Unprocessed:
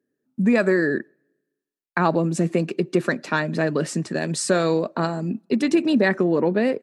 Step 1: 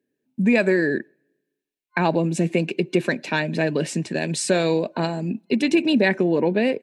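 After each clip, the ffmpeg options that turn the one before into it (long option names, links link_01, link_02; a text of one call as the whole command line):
ffmpeg -i in.wav -af "superequalizer=10b=0.355:12b=2.24:13b=1.58" out.wav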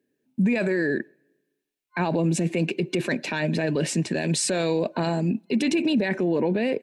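ffmpeg -i in.wav -af "alimiter=limit=-18dB:level=0:latency=1:release=18,volume=2.5dB" out.wav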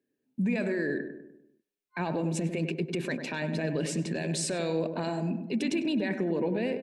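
ffmpeg -i in.wav -filter_complex "[0:a]asplit=2[link_01][link_02];[link_02]adelay=99,lowpass=frequency=1400:poles=1,volume=-7dB,asplit=2[link_03][link_04];[link_04]adelay=99,lowpass=frequency=1400:poles=1,volume=0.53,asplit=2[link_05][link_06];[link_06]adelay=99,lowpass=frequency=1400:poles=1,volume=0.53,asplit=2[link_07][link_08];[link_08]adelay=99,lowpass=frequency=1400:poles=1,volume=0.53,asplit=2[link_09][link_10];[link_10]adelay=99,lowpass=frequency=1400:poles=1,volume=0.53,asplit=2[link_11][link_12];[link_12]adelay=99,lowpass=frequency=1400:poles=1,volume=0.53[link_13];[link_01][link_03][link_05][link_07][link_09][link_11][link_13]amix=inputs=7:normalize=0,volume=-7dB" out.wav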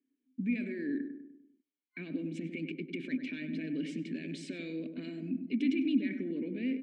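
ffmpeg -i in.wav -filter_complex "[0:a]asplit=3[link_01][link_02][link_03];[link_01]bandpass=frequency=270:width_type=q:width=8,volume=0dB[link_04];[link_02]bandpass=frequency=2290:width_type=q:width=8,volume=-6dB[link_05];[link_03]bandpass=frequency=3010:width_type=q:width=8,volume=-9dB[link_06];[link_04][link_05][link_06]amix=inputs=3:normalize=0,volume=5.5dB" out.wav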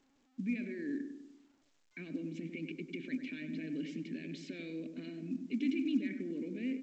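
ffmpeg -i in.wav -af "volume=-3.5dB" -ar 16000 -c:a pcm_alaw out.wav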